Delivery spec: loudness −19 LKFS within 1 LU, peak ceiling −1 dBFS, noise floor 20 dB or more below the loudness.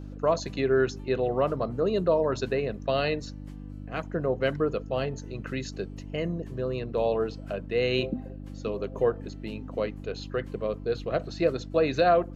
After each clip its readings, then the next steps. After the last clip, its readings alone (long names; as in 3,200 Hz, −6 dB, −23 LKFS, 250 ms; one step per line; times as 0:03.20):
mains hum 50 Hz; hum harmonics up to 300 Hz; level of the hum −37 dBFS; integrated loudness −29.0 LKFS; sample peak −11.5 dBFS; target loudness −19.0 LKFS
→ hum removal 50 Hz, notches 6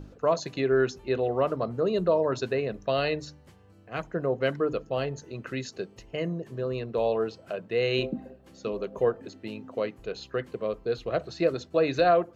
mains hum none found; integrated loudness −29.0 LKFS; sample peak −12.5 dBFS; target loudness −19.0 LKFS
→ level +10 dB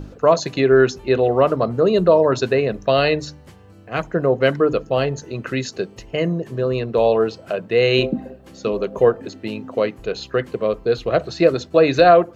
integrated loudness −19.0 LKFS; sample peak −2.5 dBFS; background noise floor −45 dBFS